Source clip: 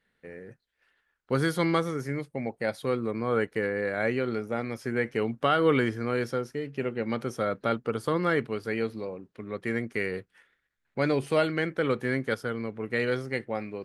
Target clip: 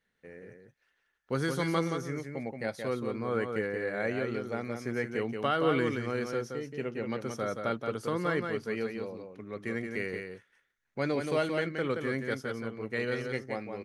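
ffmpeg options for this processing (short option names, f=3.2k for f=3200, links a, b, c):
-filter_complex "[0:a]equalizer=f=6.1k:w=3.9:g=8,asplit=2[a][b];[b]aecho=0:1:175:0.531[c];[a][c]amix=inputs=2:normalize=0,volume=-5dB"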